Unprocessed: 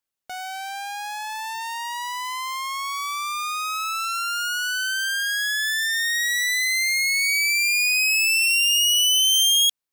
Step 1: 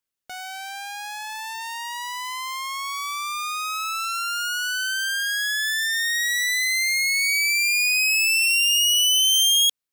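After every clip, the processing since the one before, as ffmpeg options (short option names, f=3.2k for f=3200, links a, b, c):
-af "equalizer=f=770:w=1.5:g=-4"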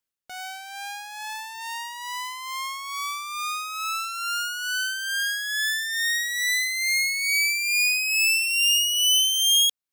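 -af "tremolo=f=2.3:d=0.48"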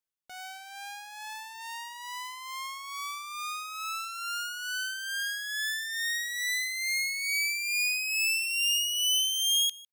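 -af "aecho=1:1:153:0.0794,volume=-6.5dB"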